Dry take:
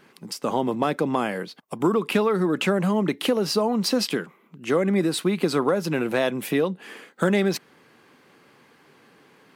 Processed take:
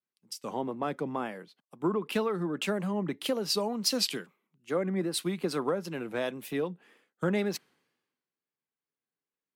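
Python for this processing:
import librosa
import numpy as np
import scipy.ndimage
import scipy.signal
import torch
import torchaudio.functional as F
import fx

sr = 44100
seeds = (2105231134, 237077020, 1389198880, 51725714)

y = fx.wow_flutter(x, sr, seeds[0], rate_hz=2.1, depth_cents=80.0)
y = fx.band_widen(y, sr, depth_pct=100)
y = y * librosa.db_to_amplitude(-9.0)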